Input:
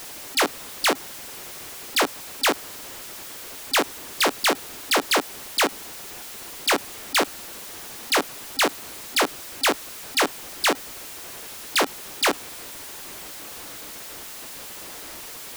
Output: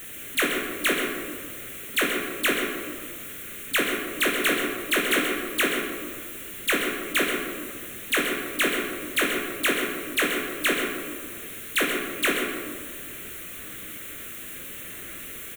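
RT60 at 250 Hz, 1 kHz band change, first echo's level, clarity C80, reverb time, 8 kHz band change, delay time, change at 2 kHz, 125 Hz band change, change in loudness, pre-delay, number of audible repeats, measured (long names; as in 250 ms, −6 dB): 2.1 s, −6.0 dB, −8.5 dB, 3.0 dB, 1.7 s, −3.0 dB, 131 ms, +2.0 dB, +3.5 dB, −0.5 dB, 14 ms, 1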